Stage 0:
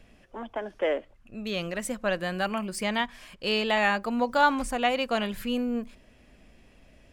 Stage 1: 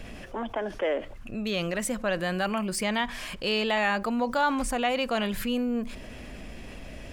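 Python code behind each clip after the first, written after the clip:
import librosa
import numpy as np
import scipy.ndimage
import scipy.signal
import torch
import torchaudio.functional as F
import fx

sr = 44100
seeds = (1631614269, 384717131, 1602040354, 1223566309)

y = fx.env_flatten(x, sr, amount_pct=50)
y = y * 10.0 ** (-4.5 / 20.0)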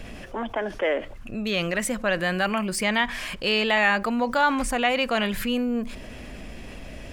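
y = fx.dynamic_eq(x, sr, hz=2000.0, q=1.3, threshold_db=-41.0, ratio=4.0, max_db=5)
y = y * 10.0 ** (2.5 / 20.0)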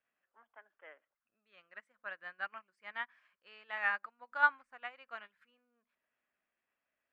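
y = fx.bandpass_q(x, sr, hz=1400.0, q=2.1)
y = fx.upward_expand(y, sr, threshold_db=-42.0, expansion=2.5)
y = y * 10.0 ** (-1.5 / 20.0)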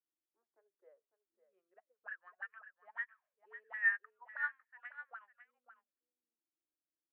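y = fx.auto_wah(x, sr, base_hz=320.0, top_hz=1800.0, q=14.0, full_db=-39.0, direction='up')
y = y + 10.0 ** (-11.5 / 20.0) * np.pad(y, (int(551 * sr / 1000.0), 0))[:len(y)]
y = y * 10.0 ** (5.0 / 20.0)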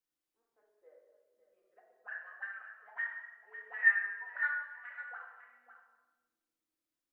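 y = fx.room_shoebox(x, sr, seeds[0], volume_m3=740.0, walls='mixed', distance_m=2.0)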